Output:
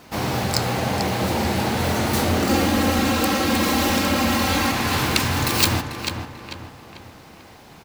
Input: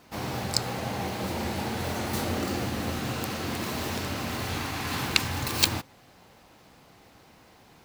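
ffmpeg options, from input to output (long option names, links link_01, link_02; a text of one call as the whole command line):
ffmpeg -i in.wav -filter_complex "[0:a]asettb=1/sr,asplit=3[link_01][link_02][link_03];[link_01]atrim=end=2.494[link_04];[link_02]atrim=start=2.49:end=4.72,asetpts=PTS-STARTPTS,afade=type=in:duration=0.004:curve=qsin,afade=type=out:start_time=2.226:duration=0.004:curve=qsin,aecho=1:1:3.7:0.98,atrim=end_sample=98343[link_05];[link_03]atrim=start=4.716[link_06];[link_04][link_05]acrossfade=duration=0.004:curve1=hsin:curve2=qsin[link_07];[link_07][link_06]acrossfade=duration=0.004:curve1=qsin:curve2=hsin,asplit=2[link_08][link_09];[link_09]adelay=442,lowpass=frequency=3400:poles=1,volume=-9dB,asplit=2[link_10][link_11];[link_11]adelay=442,lowpass=frequency=3400:poles=1,volume=0.44,asplit=2[link_12][link_13];[link_13]adelay=442,lowpass=frequency=3400:poles=1,volume=0.44,asplit=2[link_14][link_15];[link_15]adelay=442,lowpass=frequency=3400:poles=1,volume=0.44,asplit=2[link_16][link_17];[link_17]adelay=442,lowpass=frequency=3400:poles=1,volume=0.44[link_18];[link_08][link_10][link_12][link_14][link_16][link_18]amix=inputs=6:normalize=0,asoftclip=type=tanh:threshold=-17.5dB,volume=9dB" out.wav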